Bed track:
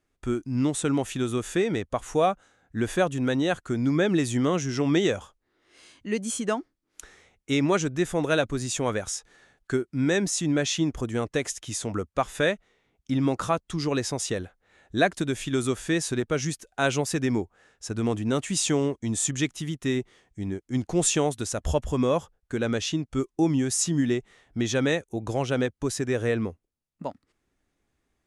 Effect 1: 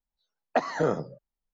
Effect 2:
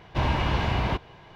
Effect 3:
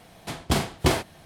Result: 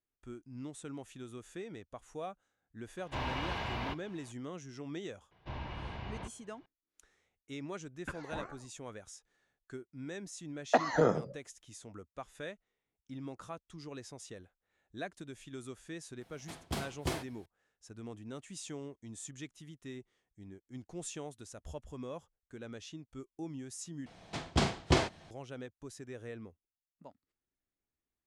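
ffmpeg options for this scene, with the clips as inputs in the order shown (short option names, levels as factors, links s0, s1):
-filter_complex "[2:a]asplit=2[s0][s1];[1:a]asplit=2[s2][s3];[3:a]asplit=2[s4][s5];[0:a]volume=0.106[s6];[s0]lowshelf=f=390:g=-8.5[s7];[s1]lowpass=5400[s8];[s2]aeval=exprs='val(0)*sin(2*PI*560*n/s+560*0.8/2*sin(2*PI*2*n/s))':c=same[s9];[s5]lowpass=f=7400:w=0.5412,lowpass=f=7400:w=1.3066[s10];[s6]asplit=2[s11][s12];[s11]atrim=end=24.064[s13];[s10]atrim=end=1.25,asetpts=PTS-STARTPTS,volume=0.531[s14];[s12]atrim=start=25.306[s15];[s7]atrim=end=1.35,asetpts=PTS-STARTPTS,volume=0.398,afade=t=in:d=0.004:c=hsin,afade=t=out:st=1.346:d=0.004:c=hsin,adelay=2970[s16];[s8]atrim=end=1.35,asetpts=PTS-STARTPTS,volume=0.133,afade=t=in:d=0.004:c=hsin,afade=t=out:st=1.346:d=0.004:c=hsin,adelay=5310[s17];[s9]atrim=end=1.53,asetpts=PTS-STARTPTS,volume=0.188,afade=t=in:d=0.004:c=hsin,afade=t=out:st=1.526:d=0.004:c=hsin,adelay=7520[s18];[s3]atrim=end=1.53,asetpts=PTS-STARTPTS,volume=0.841,afade=t=in:d=0.004:c=hsin,afade=t=out:st=1.526:d=0.004:c=hsin,adelay=448938S[s19];[s4]atrim=end=1.25,asetpts=PTS-STARTPTS,volume=0.2,afade=t=in:d=0.004:c=hsin,afade=t=out:st=1.246:d=0.004:c=hsin,adelay=16210[s20];[s13][s14]acrossfade=d=0.004:c1=hsin:c2=hsin[s21];[s21][s15]acrossfade=d=0.004:c1=hsin:c2=hsin[s22];[s22][s16][s17][s18][s19][s20]amix=inputs=6:normalize=0"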